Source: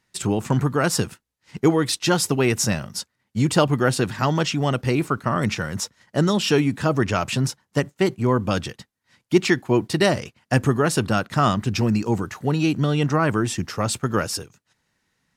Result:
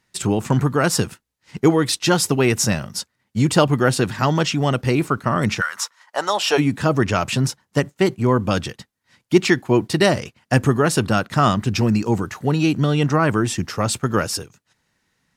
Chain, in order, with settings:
0:05.60–0:06.57: high-pass with resonance 1,400 Hz → 610 Hz, resonance Q 2.6
level +2.5 dB

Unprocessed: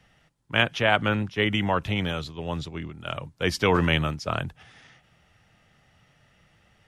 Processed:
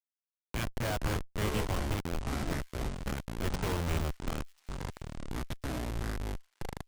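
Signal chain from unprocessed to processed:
comparator with hysteresis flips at −22 dBFS
delay with a high-pass on its return 1,040 ms, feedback 34%, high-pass 3,400 Hz, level −22.5 dB
delay with pitch and tempo change per echo 203 ms, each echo −7 semitones, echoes 2
level −3.5 dB

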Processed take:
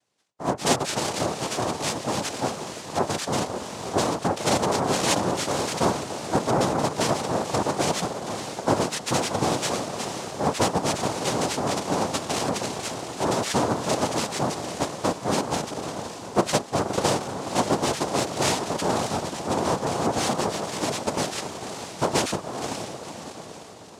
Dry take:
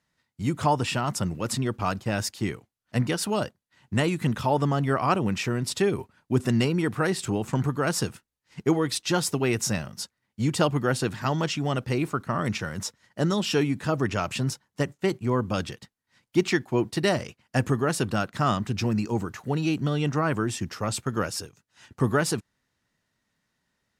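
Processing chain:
feedback delay with all-pass diffusion 529 ms, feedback 51%, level −7.5 dB
cochlear-implant simulation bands 2

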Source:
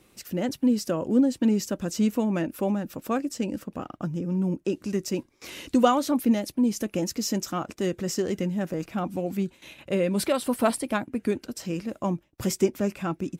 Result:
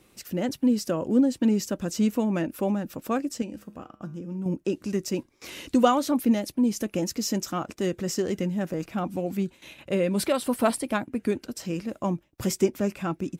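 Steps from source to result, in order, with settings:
0:03.42–0:04.46: tuned comb filter 69 Hz, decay 0.51 s, harmonics odd, mix 60%

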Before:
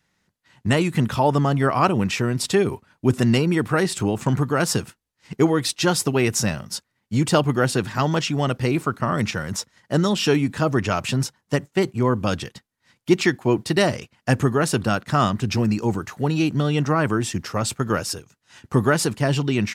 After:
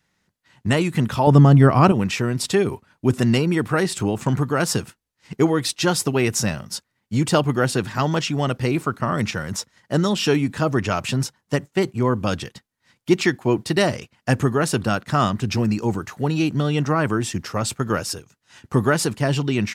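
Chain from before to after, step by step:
0:01.27–0:01.92: low-shelf EQ 330 Hz +12 dB

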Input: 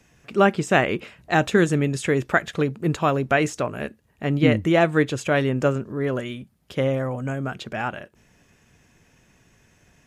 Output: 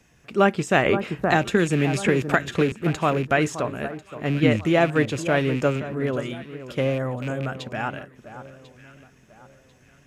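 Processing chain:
loose part that buzzes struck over −28 dBFS, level −25 dBFS
delay that swaps between a low-pass and a high-pass 522 ms, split 1,500 Hz, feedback 57%, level −12 dB
0:00.85–0:02.72: multiband upward and downward compressor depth 100%
level −1 dB

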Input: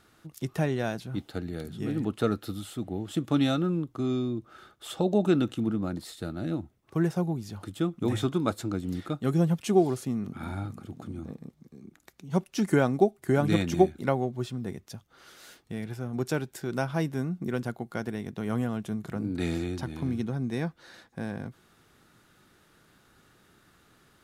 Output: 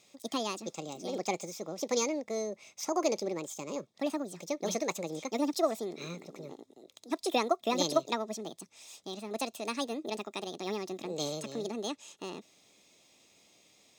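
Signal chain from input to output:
flat-topped bell 3,000 Hz +11 dB
notch comb filter 870 Hz
wrong playback speed 45 rpm record played at 78 rpm
level −5.5 dB

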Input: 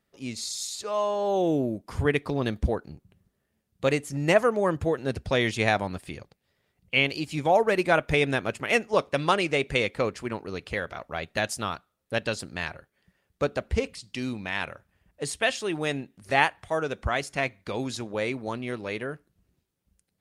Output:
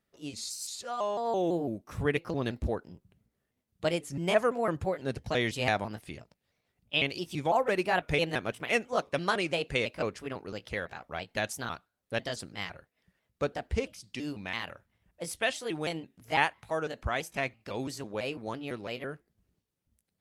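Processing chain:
pitch shifter gated in a rhythm +2.5 semitones, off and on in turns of 167 ms
level −4.5 dB

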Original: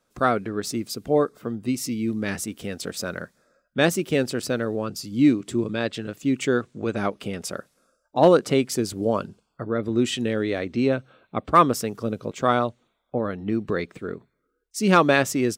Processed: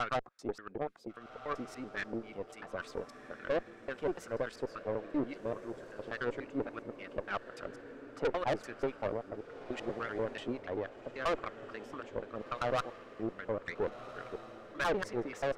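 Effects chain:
slices reordered back to front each 97 ms, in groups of 4
auto-filter band-pass sine 3.6 Hz 460–1,900 Hz
tube saturation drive 27 dB, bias 0.6
on a send: feedback delay with all-pass diffusion 1,481 ms, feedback 46%, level −12 dB

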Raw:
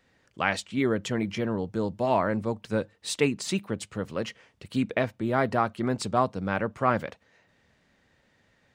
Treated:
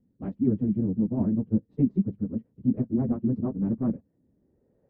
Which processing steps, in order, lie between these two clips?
harmonic generator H 3 −21 dB, 7 −28 dB, 8 −43 dB, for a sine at −7.5 dBFS
time stretch by phase vocoder 0.56×
low-pass filter sweep 240 Hz → 1,800 Hz, 0:03.97–0:06.49
level +8.5 dB

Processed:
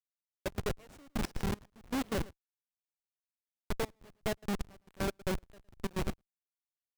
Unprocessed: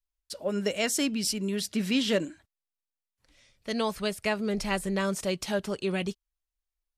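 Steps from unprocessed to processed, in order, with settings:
loose part that buzzes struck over −36 dBFS, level −24 dBFS
comparator with hysteresis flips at −24.5 dBFS
on a send: single-tap delay 111 ms −19.5 dB
on the sum: gate pattern "....x.xx" 156 BPM −24 dB

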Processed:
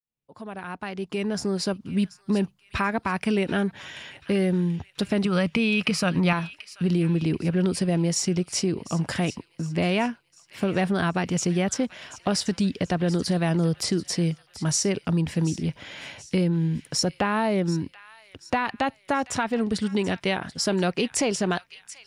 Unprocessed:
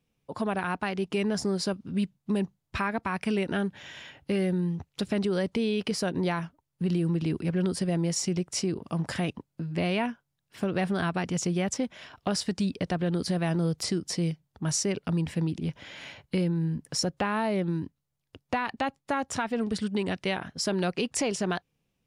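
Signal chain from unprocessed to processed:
fade in at the beginning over 1.95 s
0:05.25–0:06.33: thirty-one-band graphic EQ 160 Hz +8 dB, 400 Hz −8 dB, 1,250 Hz +10 dB, 2,500 Hz +12 dB
delay with a high-pass on its return 734 ms, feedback 44%, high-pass 1,800 Hz, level −14.5 dB
level +4 dB

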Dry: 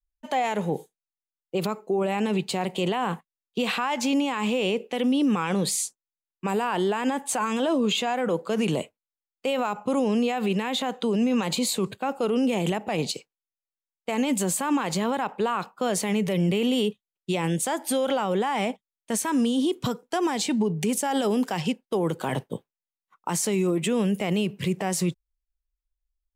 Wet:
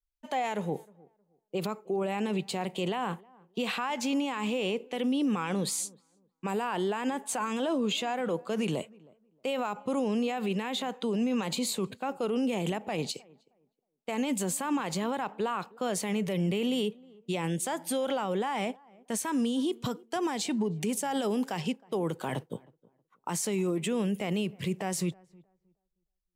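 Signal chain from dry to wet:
tape delay 314 ms, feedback 25%, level −22.5 dB, low-pass 1,100 Hz
level −5.5 dB

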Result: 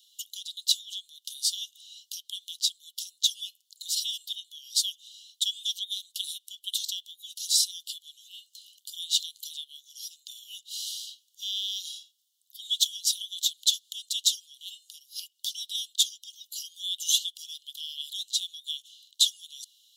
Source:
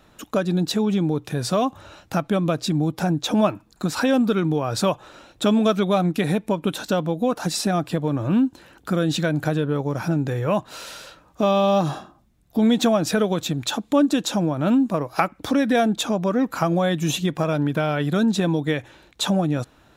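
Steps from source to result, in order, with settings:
Chebyshev high-pass filter 2,900 Hz, order 10
level +5 dB

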